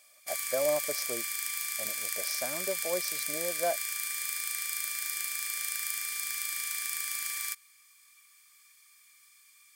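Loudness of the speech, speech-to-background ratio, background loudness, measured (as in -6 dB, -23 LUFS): -35.5 LUFS, -3.5 dB, -32.0 LUFS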